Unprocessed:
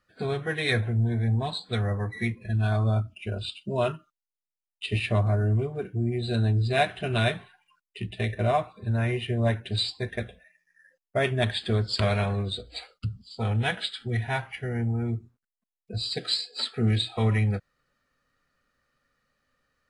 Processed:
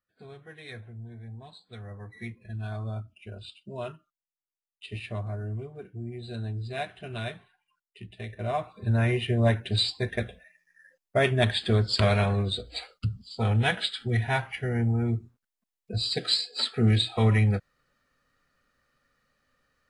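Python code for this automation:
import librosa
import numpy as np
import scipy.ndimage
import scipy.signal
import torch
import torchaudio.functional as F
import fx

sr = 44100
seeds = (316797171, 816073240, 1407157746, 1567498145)

y = fx.gain(x, sr, db=fx.line((1.63, -17.5), (2.27, -10.0), (8.31, -10.0), (8.87, 2.0)))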